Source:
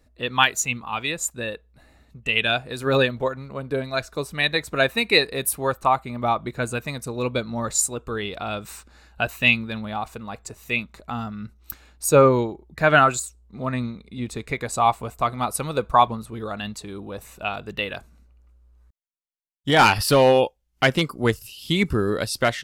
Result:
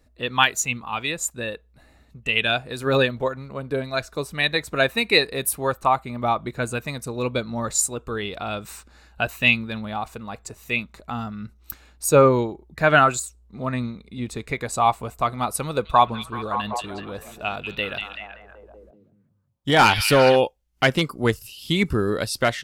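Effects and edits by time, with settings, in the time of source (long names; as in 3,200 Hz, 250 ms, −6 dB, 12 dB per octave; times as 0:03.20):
0:15.66–0:20.36: echo through a band-pass that steps 191 ms, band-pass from 3,100 Hz, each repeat −0.7 octaves, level −3 dB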